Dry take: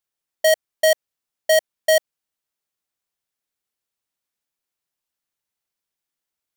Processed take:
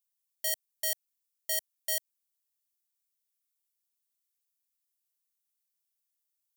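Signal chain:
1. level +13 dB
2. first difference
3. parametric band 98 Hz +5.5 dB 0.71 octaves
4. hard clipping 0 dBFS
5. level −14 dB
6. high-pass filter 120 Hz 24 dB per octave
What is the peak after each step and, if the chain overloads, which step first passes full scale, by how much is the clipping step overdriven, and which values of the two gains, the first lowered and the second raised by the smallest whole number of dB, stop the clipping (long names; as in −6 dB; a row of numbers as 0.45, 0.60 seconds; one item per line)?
−0.5, +5.5, +5.5, 0.0, −14.0, −14.0 dBFS
step 2, 5.5 dB
step 1 +7 dB, step 5 −8 dB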